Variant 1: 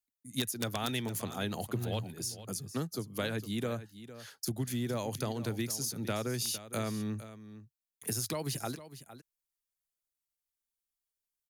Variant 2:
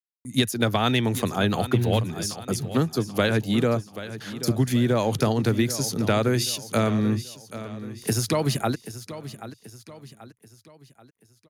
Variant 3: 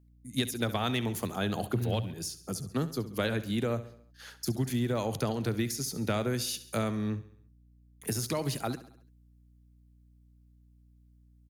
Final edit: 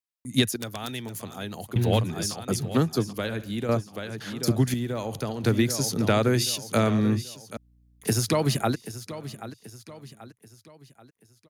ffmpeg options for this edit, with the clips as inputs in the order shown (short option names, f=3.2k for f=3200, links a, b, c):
-filter_complex "[2:a]asplit=3[a][b][c];[1:a]asplit=5[d][e][f][g][h];[d]atrim=end=0.562[i];[0:a]atrim=start=0.558:end=1.762[j];[e]atrim=start=1.758:end=3.132[k];[a]atrim=start=3.128:end=3.692[l];[f]atrim=start=3.688:end=4.742[m];[b]atrim=start=4.738:end=5.442[n];[g]atrim=start=5.438:end=7.572[o];[c]atrim=start=7.568:end=8.052[p];[h]atrim=start=8.048[q];[i][j]acrossfade=d=0.004:c1=hsin:c2=hsin[r];[r][k]acrossfade=d=0.004:c1=hsin:c2=hsin[s];[s][l]acrossfade=d=0.004:c1=hsin:c2=hsin[t];[t][m]acrossfade=d=0.004:c1=hsin:c2=hsin[u];[u][n]acrossfade=d=0.004:c1=hsin:c2=hsin[v];[v][o]acrossfade=d=0.004:c1=hsin:c2=hsin[w];[w][p]acrossfade=d=0.004:c1=hsin:c2=hsin[x];[x][q]acrossfade=d=0.004:c1=hsin:c2=hsin"